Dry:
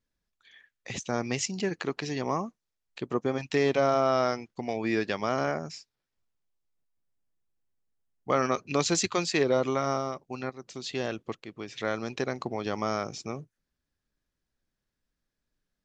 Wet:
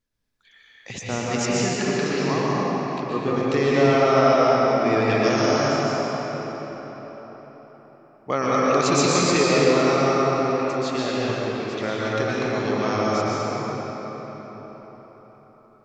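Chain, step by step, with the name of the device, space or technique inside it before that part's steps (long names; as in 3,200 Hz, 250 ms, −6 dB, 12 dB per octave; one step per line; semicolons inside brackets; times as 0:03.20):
0:05.23–0:05.68: high shelf with overshoot 3,200 Hz +9 dB, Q 1.5
cathedral (convolution reverb RT60 4.8 s, pre-delay 113 ms, DRR −7 dB)
level +1 dB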